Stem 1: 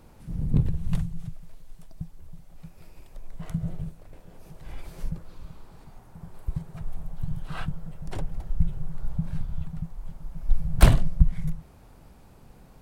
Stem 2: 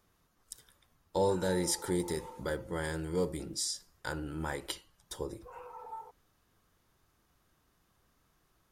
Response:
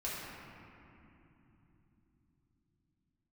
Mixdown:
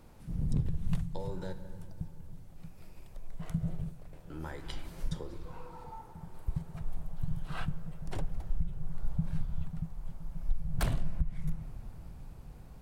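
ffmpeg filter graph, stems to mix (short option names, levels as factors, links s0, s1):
-filter_complex "[0:a]volume=0.631,asplit=2[s0][s1];[s1]volume=0.075[s2];[1:a]lowpass=5700,acrossover=split=160[s3][s4];[s4]acompressor=threshold=0.0141:ratio=6[s5];[s3][s5]amix=inputs=2:normalize=0,volume=0.596,asplit=3[s6][s7][s8];[s6]atrim=end=1.53,asetpts=PTS-STARTPTS,afade=t=out:st=1.526:d=0.004:c=hsin[s9];[s7]atrim=start=1.53:end=4.3,asetpts=PTS-STARTPTS,volume=0[s10];[s8]atrim=start=4.3,asetpts=PTS-STARTPTS,afade=t=in:d=0.004:c=hsin[s11];[s9][s10][s11]concat=n=3:v=0:a=1,asplit=2[s12][s13];[s13]volume=0.316[s14];[2:a]atrim=start_sample=2205[s15];[s2][s14]amix=inputs=2:normalize=0[s16];[s16][s15]afir=irnorm=-1:irlink=0[s17];[s0][s12][s17]amix=inputs=3:normalize=0,alimiter=limit=0.112:level=0:latency=1:release=341"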